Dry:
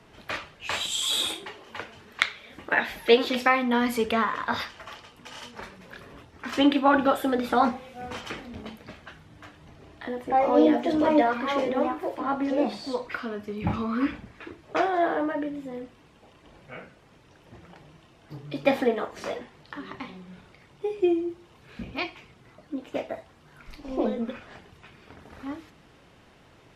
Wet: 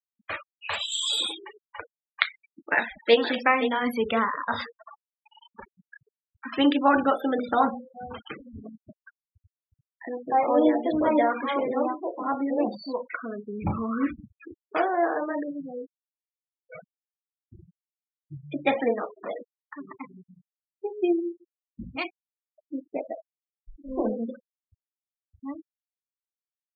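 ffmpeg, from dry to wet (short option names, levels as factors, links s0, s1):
-filter_complex "[0:a]asplit=2[s0][s1];[s1]afade=t=in:st=2.25:d=0.01,afade=t=out:st=3.17:d=0.01,aecho=0:1:520|1040|1560:0.316228|0.0948683|0.0284605[s2];[s0][s2]amix=inputs=2:normalize=0,asettb=1/sr,asplit=3[s3][s4][s5];[s3]atrim=end=15.594[s6];[s4]atrim=start=15.59:end=18.84,asetpts=PTS-STARTPTS,afade=t=in:d=0.004:c=qsin,afade=t=out:st=3.246:d=0.004:c=qsin,aphaser=in_gain=1:out_gain=1:delay=3.5:decay=0.43:speed=1.5:type=triangular[s7];[s5]atrim=start=18.836[s8];[s6][s7]acrossfade=d=0.004:c1=hsin:c2=qsin[s9];[s9][s8]acrossfade=d=0.004:c1=qsin:c2=hsin,bandreject=f=60:t=h:w=6,bandreject=f=120:t=h:w=6,bandreject=f=180:t=h:w=6,bandreject=f=240:t=h:w=6,bandreject=f=300:t=h:w=6,bandreject=f=360:t=h:w=6,bandreject=f=420:t=h:w=6,bandreject=f=480:t=h:w=6,bandreject=f=540:t=h:w=6,bandreject=f=600:t=h:w=6,afftfilt=real='re*gte(hypot(re,im),0.0355)':imag='im*gte(hypot(re,im),0.0355)':win_size=1024:overlap=0.75"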